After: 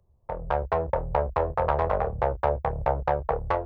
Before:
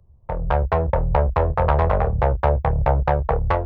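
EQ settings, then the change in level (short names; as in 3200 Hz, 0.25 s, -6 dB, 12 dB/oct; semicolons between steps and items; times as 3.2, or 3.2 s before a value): tone controls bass -9 dB, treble +7 dB; high shelf 2200 Hz -8 dB; -3.0 dB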